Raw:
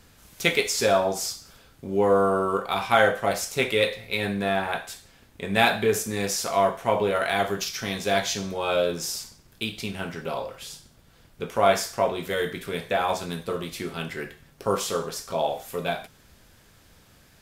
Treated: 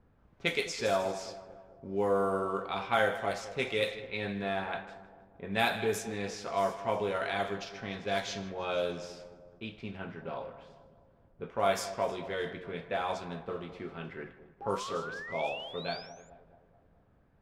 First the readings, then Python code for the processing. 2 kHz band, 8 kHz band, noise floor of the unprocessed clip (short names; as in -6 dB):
-8.0 dB, -14.5 dB, -56 dBFS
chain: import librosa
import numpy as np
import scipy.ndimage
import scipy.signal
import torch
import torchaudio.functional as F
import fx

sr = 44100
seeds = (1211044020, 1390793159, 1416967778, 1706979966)

y = fx.echo_split(x, sr, split_hz=1000.0, low_ms=215, high_ms=156, feedback_pct=52, wet_db=-13.5)
y = fx.spec_paint(y, sr, seeds[0], shape='rise', start_s=14.61, length_s=1.69, low_hz=780.0, high_hz=7300.0, level_db=-33.0)
y = fx.env_lowpass(y, sr, base_hz=990.0, full_db=-17.0)
y = y * librosa.db_to_amplitude(-8.5)